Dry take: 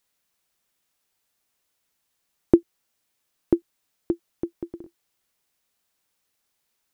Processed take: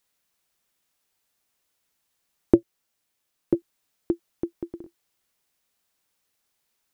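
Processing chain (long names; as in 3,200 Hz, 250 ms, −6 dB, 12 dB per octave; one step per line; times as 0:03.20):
0:02.54–0:03.55: amplitude modulation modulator 220 Hz, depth 30%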